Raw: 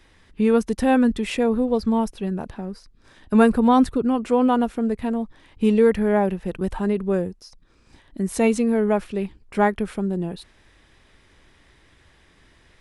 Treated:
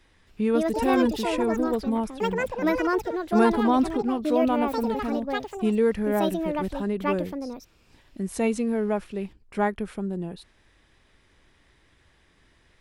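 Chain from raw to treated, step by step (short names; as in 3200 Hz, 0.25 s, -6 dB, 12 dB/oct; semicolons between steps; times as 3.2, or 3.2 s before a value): echoes that change speed 0.27 s, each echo +6 st, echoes 2; gain -5.5 dB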